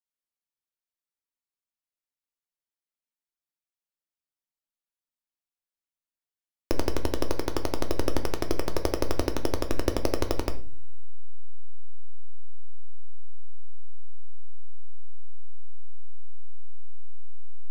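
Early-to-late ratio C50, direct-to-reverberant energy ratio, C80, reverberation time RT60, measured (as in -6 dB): 14.0 dB, 5.5 dB, 19.5 dB, no single decay rate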